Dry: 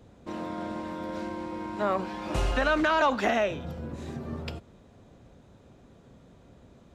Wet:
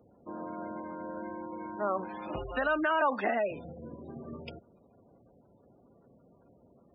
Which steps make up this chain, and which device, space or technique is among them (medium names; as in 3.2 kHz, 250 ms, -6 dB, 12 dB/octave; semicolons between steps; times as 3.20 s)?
spectral gate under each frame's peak -20 dB strong; high-pass 250 Hz 6 dB/octave; exciter from parts (in parallel at -6 dB: high-pass 4.4 kHz 24 dB/octave + saturation -39.5 dBFS, distortion -20 dB); on the sum: trim -3 dB